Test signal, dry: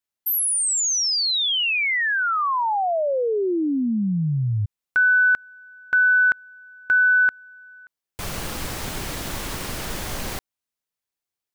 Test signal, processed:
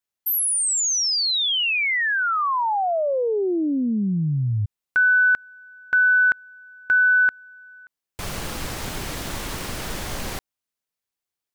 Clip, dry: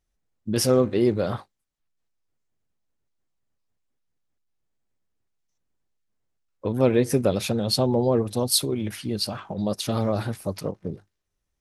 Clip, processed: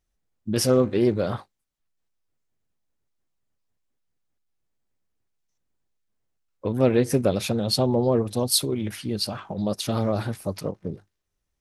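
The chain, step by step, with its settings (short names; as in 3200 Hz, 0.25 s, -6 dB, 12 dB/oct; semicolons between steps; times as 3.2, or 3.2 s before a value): Doppler distortion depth 0.11 ms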